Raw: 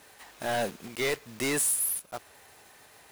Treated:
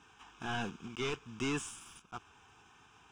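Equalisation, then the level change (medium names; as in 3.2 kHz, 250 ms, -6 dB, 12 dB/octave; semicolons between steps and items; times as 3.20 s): distance through air 120 m; static phaser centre 2.9 kHz, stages 8; 0.0 dB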